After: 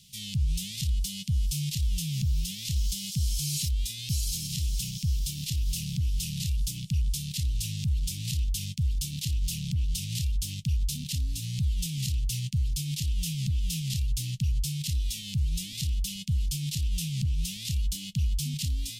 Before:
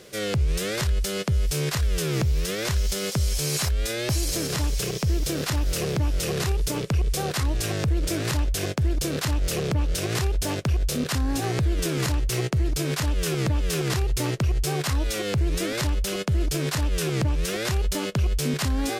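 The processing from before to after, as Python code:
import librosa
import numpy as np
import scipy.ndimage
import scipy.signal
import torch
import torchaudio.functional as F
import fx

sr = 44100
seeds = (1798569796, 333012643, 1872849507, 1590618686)

y = scipy.signal.sosfilt(scipy.signal.ellip(3, 1.0, 40, [180.0, 3000.0], 'bandstop', fs=sr, output='sos'), x)
y = F.gain(torch.from_numpy(y), -3.0).numpy()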